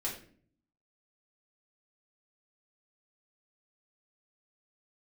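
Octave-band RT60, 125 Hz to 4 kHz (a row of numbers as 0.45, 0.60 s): 0.90, 0.85, 0.55, 0.40, 0.45, 0.35 s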